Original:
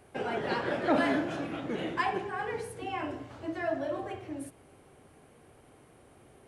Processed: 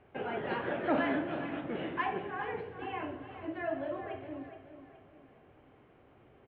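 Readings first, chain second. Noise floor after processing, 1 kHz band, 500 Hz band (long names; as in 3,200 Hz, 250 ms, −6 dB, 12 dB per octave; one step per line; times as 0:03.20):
−61 dBFS, −3.0 dB, −3.0 dB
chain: Butterworth low-pass 3,200 Hz 36 dB per octave
on a send: repeating echo 420 ms, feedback 39%, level −11 dB
on the sum: level −3.5 dB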